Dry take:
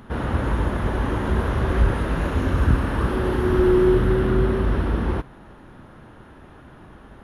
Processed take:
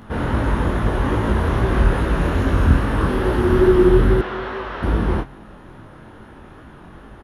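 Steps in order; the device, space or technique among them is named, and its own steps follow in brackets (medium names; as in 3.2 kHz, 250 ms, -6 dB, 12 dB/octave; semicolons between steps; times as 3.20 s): double-tracked vocal (doubling 28 ms -13 dB; chorus 2.4 Hz, delay 18 ms, depth 6.1 ms); 4.21–4.83 s: three-band isolator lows -20 dB, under 510 Hz, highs -22 dB, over 6.3 kHz; trim +6.5 dB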